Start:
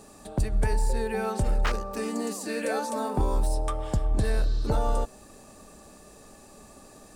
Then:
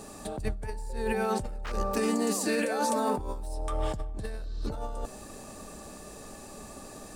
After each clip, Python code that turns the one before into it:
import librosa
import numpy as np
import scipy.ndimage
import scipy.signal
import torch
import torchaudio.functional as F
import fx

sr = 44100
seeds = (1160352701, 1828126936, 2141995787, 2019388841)

y = fx.over_compress(x, sr, threshold_db=-31.0, ratio=-1.0)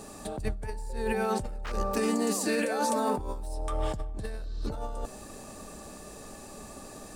y = x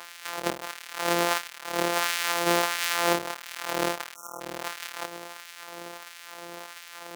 y = np.r_[np.sort(x[:len(x) // 256 * 256].reshape(-1, 256), axis=1).ravel(), x[len(x) // 256 * 256:]]
y = fx.spec_erase(y, sr, start_s=4.15, length_s=0.26, low_hz=1500.0, high_hz=5400.0)
y = fx.filter_lfo_highpass(y, sr, shape='sine', hz=1.5, low_hz=390.0, high_hz=2000.0, q=0.99)
y = y * 10.0 ** (7.5 / 20.0)